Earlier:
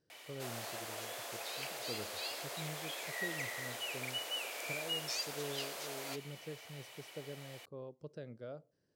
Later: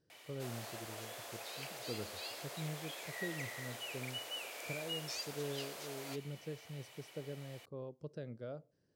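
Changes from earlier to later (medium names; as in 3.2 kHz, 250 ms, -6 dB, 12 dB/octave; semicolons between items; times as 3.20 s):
background -4.0 dB; master: add bass shelf 270 Hz +4.5 dB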